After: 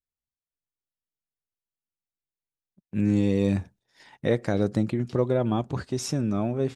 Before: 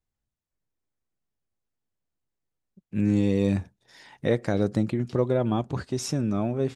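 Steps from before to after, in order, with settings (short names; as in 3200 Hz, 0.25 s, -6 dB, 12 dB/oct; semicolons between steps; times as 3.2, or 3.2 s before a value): gate -50 dBFS, range -14 dB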